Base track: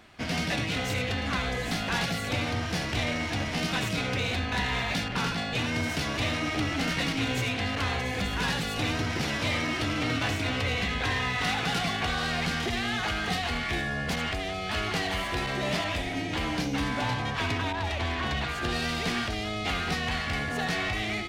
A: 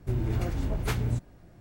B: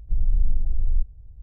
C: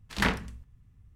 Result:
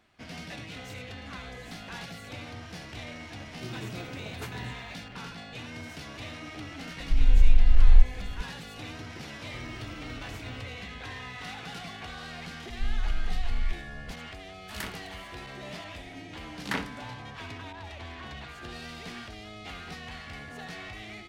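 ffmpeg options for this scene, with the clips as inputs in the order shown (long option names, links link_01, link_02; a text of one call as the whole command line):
ffmpeg -i bed.wav -i cue0.wav -i cue1.wav -i cue2.wav -filter_complex "[1:a]asplit=2[link_01][link_02];[2:a]asplit=2[link_03][link_04];[3:a]asplit=2[link_05][link_06];[0:a]volume=-12dB[link_07];[link_01]highpass=frequency=130:width=0.5412,highpass=frequency=130:width=1.3066[link_08];[link_03]asubboost=boost=7:cutoff=160[link_09];[link_04]alimiter=limit=-18dB:level=0:latency=1:release=183[link_10];[link_05]aemphasis=mode=production:type=75fm[link_11];[link_06]highpass=170[link_12];[link_08]atrim=end=1.6,asetpts=PTS-STARTPTS,volume=-7.5dB,afade=type=in:duration=0.004:curve=hsin,afade=type=out:start_time=1.596:duration=0.004:curve=hsin,adelay=3540[link_13];[link_09]atrim=end=1.42,asetpts=PTS-STARTPTS,volume=-3dB,afade=type=in:duration=0.004:curve=hsin,afade=type=out:start_time=1.416:duration=0.004:curve=hsin,adelay=7000[link_14];[link_02]atrim=end=1.6,asetpts=PTS-STARTPTS,volume=-16dB,afade=type=in:duration=0.004:curve=hsin,afade=type=out:start_time=1.596:duration=0.004:curve=hsin,adelay=417186S[link_15];[link_10]atrim=end=1.42,asetpts=PTS-STARTPTS,volume=-2dB,afade=type=in:duration=0.004:curve=hsin,afade=type=out:start_time=1.416:duration=0.004:curve=hsin,adelay=12700[link_16];[link_11]atrim=end=1.15,asetpts=PTS-STARTPTS,volume=-14dB,afade=type=in:duration=0.004:curve=hsin,afade=type=out:start_time=1.146:duration=0.004:curve=hsin,adelay=14580[link_17];[link_12]atrim=end=1.15,asetpts=PTS-STARTPTS,volume=-5dB,afade=type=in:duration=0.004:curve=hsin,afade=type=out:start_time=1.146:duration=0.004:curve=hsin,adelay=16490[link_18];[link_07][link_13][link_14][link_15][link_16][link_17][link_18]amix=inputs=7:normalize=0" out.wav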